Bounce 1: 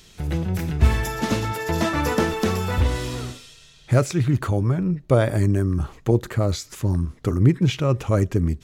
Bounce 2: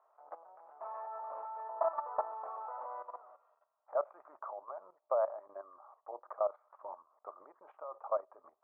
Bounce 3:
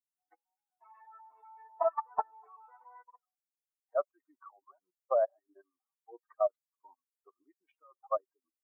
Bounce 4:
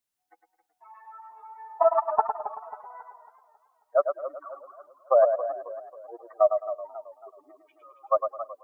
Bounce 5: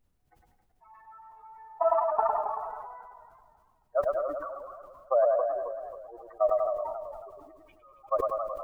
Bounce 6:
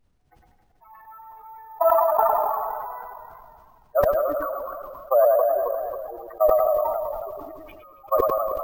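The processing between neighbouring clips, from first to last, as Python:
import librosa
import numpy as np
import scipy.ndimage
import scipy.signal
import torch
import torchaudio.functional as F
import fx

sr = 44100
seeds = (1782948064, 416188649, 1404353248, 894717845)

y1 = scipy.signal.sosfilt(scipy.signal.ellip(3, 1.0, 70, [600.0, 1200.0], 'bandpass', fs=sr, output='sos'), x)
y1 = fx.level_steps(y1, sr, step_db=14)
y1 = y1 * 10.0 ** (-1.0 / 20.0)
y2 = fx.bin_expand(y1, sr, power=3.0)
y2 = y2 * 10.0 ** (8.0 / 20.0)
y3 = fx.echo_feedback(y2, sr, ms=106, feedback_pct=23, wet_db=-7.0)
y3 = fx.echo_warbled(y3, sr, ms=272, feedback_pct=42, rate_hz=2.8, cents=101, wet_db=-12.5)
y3 = y3 * 10.0 ** (8.5 / 20.0)
y4 = fx.dmg_noise_colour(y3, sr, seeds[0], colour='brown', level_db=-68.0)
y4 = fx.echo_feedback(y4, sr, ms=195, feedback_pct=40, wet_db=-17)
y4 = fx.sustainer(y4, sr, db_per_s=29.0)
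y4 = y4 * 10.0 ** (-5.5 / 20.0)
y5 = fx.reverse_delay(y4, sr, ms=199, wet_db=-13)
y5 = np.repeat(scipy.signal.resample_poly(y5, 1, 3), 3)[:len(y5)]
y5 = fx.sustainer(y5, sr, db_per_s=24.0)
y5 = y5 * 10.0 ** (5.5 / 20.0)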